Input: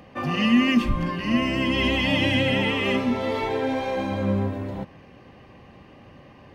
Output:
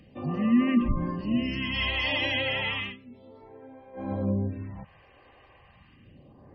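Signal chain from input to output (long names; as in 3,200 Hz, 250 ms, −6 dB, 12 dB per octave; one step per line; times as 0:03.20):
0:00.64–0:02.18: double-tracking delay 50 ms −10.5 dB
gate on every frequency bin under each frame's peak −30 dB strong
all-pass phaser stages 2, 0.33 Hz, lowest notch 170–4,200 Hz
0:02.78–0:04.11: duck −19 dB, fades 0.18 s
level −4 dB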